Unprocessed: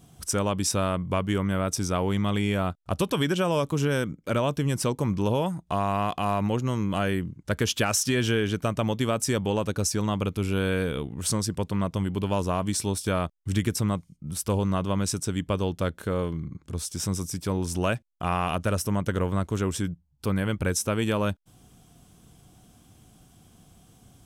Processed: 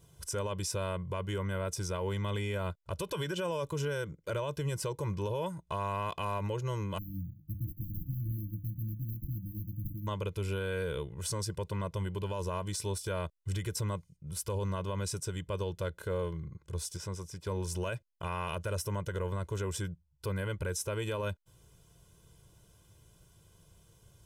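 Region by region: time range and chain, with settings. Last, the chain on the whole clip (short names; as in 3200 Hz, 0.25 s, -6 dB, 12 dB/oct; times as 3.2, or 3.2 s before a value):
6.98–10.07 notches 50/100/150/200/250/300/350/400/450/500 Hz + sample-rate reducer 2600 Hz + brick-wall FIR band-stop 320–12000 Hz
16.97–17.47 LPF 2700 Hz 6 dB/oct + low shelf 320 Hz -5 dB
whole clip: comb 2 ms, depth 98%; limiter -17 dBFS; gain -8.5 dB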